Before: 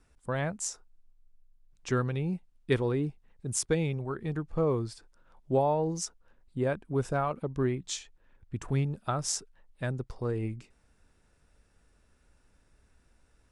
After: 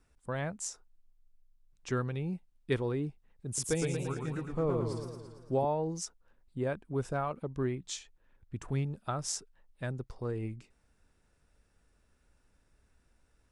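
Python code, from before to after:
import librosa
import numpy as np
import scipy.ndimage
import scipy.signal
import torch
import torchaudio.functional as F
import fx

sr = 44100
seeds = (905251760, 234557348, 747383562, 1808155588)

y = fx.echo_warbled(x, sr, ms=113, feedback_pct=61, rate_hz=2.8, cents=124, wet_db=-5.0, at=(3.46, 5.65))
y = y * 10.0 ** (-4.0 / 20.0)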